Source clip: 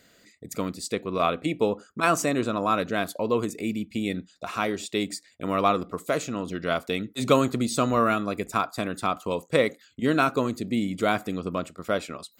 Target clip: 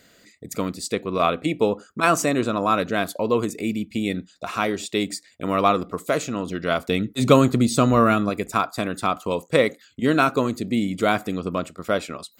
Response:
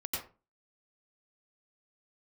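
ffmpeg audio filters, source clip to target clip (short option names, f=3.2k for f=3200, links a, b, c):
-filter_complex "[0:a]asettb=1/sr,asplit=3[a][b][c];[a]atrim=end=6.794[d];[b]atrim=start=6.79:end=8.3,asetpts=PTS-STARTPTS,afade=t=in:d=0.004:c=qsin,afade=t=out:st=1.506:d=0.004:c=qsin,lowshelf=f=230:g=7.5[e];[c]atrim=start=8.296[f];[d][e]acrossfade=d=0.004:c1=hsin:c2=qsin[g];[g][f]acrossfade=d=0.004:c1=qsin:c2=hsin,volume=3.5dB"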